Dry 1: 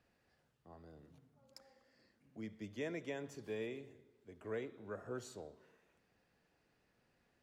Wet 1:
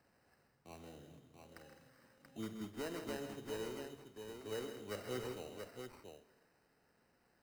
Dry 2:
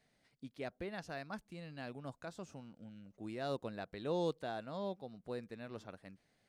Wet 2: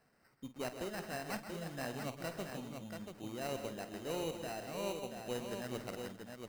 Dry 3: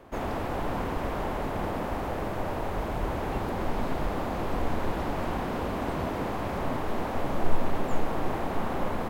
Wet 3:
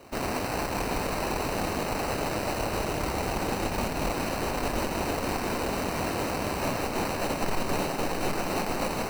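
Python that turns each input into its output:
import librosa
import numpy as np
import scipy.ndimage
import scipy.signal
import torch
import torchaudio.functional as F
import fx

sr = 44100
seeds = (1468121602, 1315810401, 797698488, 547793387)

y = fx.low_shelf(x, sr, hz=120.0, db=-5.5)
y = fx.rider(y, sr, range_db=5, speed_s=0.5)
y = fx.cheby_harmonics(y, sr, harmonics=(5, 6), levels_db=(-24, -14), full_scale_db=-15.0)
y = fx.sample_hold(y, sr, seeds[0], rate_hz=3400.0, jitter_pct=0)
y = fx.echo_multitap(y, sr, ms=(48, 129, 161, 211, 394, 683), db=(-12.5, -11.0, -11.0, -16.0, -19.0, -6.0))
y = F.gain(torch.from_numpy(y), -2.0).numpy()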